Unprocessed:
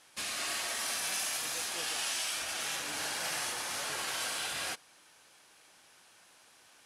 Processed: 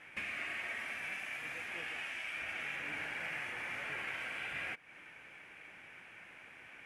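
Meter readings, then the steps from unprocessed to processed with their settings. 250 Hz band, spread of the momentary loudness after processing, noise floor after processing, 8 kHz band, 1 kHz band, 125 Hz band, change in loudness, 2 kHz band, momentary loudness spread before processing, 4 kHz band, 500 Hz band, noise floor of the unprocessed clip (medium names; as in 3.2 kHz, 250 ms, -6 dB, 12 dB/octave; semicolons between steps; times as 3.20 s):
-3.5 dB, 14 LU, -56 dBFS, -24.5 dB, -7.5 dB, -1.0 dB, -6.0 dB, +0.5 dB, 3 LU, -13.0 dB, -6.5 dB, -61 dBFS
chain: compression 4:1, threshold -47 dBFS, peak gain reduction 13 dB; FFT filter 150 Hz 0 dB, 1.1 kHz -8 dB, 2.3 kHz +6 dB, 4.1 kHz -23 dB; trim +10 dB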